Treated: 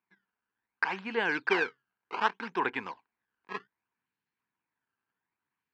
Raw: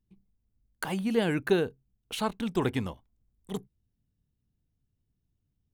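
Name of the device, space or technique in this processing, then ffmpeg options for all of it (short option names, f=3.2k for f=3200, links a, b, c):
circuit-bent sampling toy: -af "acrusher=samples=17:mix=1:aa=0.000001:lfo=1:lforange=27.2:lforate=0.65,highpass=450,equalizer=f=590:t=q:w=4:g=-10,equalizer=f=960:t=q:w=4:g=9,equalizer=f=1.6k:t=q:w=4:g=9,equalizer=f=2.4k:t=q:w=4:g=6,equalizer=f=3.5k:t=q:w=4:g=-5,lowpass=f=4.2k:w=0.5412,lowpass=f=4.2k:w=1.3066"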